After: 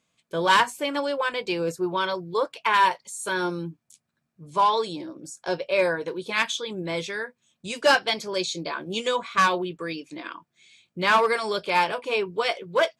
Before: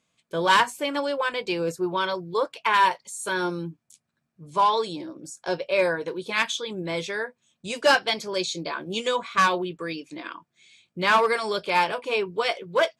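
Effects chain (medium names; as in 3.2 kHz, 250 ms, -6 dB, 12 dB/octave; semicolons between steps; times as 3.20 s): 7.01–7.82 s: dynamic bell 680 Hz, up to -6 dB, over -45 dBFS, Q 1.2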